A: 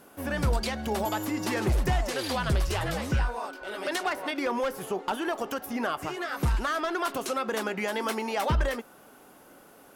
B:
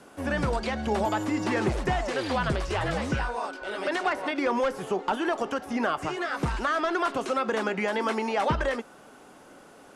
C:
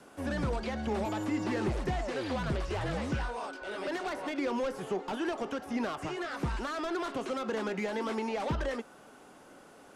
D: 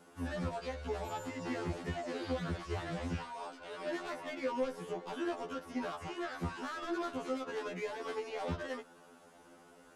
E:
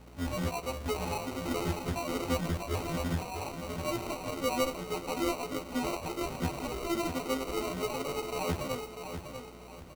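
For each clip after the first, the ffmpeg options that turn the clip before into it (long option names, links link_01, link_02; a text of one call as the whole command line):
ffmpeg -i in.wav -filter_complex "[0:a]acrossover=split=2800[link_01][link_02];[link_02]acompressor=threshold=-44dB:ratio=4:attack=1:release=60[link_03];[link_01][link_03]amix=inputs=2:normalize=0,lowpass=frequency=9200:width=0.5412,lowpass=frequency=9200:width=1.3066,acrossover=split=200|1100|5000[link_04][link_05][link_06][link_07];[link_04]acompressor=threshold=-33dB:ratio=6[link_08];[link_08][link_05][link_06][link_07]amix=inputs=4:normalize=0,volume=3dB" out.wav
ffmpeg -i in.wav -filter_complex "[0:a]acrossover=split=490|4100[link_01][link_02][link_03];[link_02]asoftclip=type=tanh:threshold=-32dB[link_04];[link_03]alimiter=level_in=20dB:limit=-24dB:level=0:latency=1,volume=-20dB[link_05];[link_01][link_04][link_05]amix=inputs=3:normalize=0,asoftclip=type=hard:threshold=-21dB,volume=-3.5dB" out.wav
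ffmpeg -i in.wav -af "afftfilt=real='re*2*eq(mod(b,4),0)':imag='im*2*eq(mod(b,4),0)':win_size=2048:overlap=0.75,volume=-2.5dB" out.wav
ffmpeg -i in.wav -af "aeval=exprs='val(0)+0.00141*(sin(2*PI*60*n/s)+sin(2*PI*2*60*n/s)/2+sin(2*PI*3*60*n/s)/3+sin(2*PI*4*60*n/s)/4+sin(2*PI*5*60*n/s)/5)':channel_layout=same,acrusher=samples=26:mix=1:aa=0.000001,aecho=1:1:645|1290|1935|2580:0.398|0.143|0.0516|0.0186,volume=4.5dB" out.wav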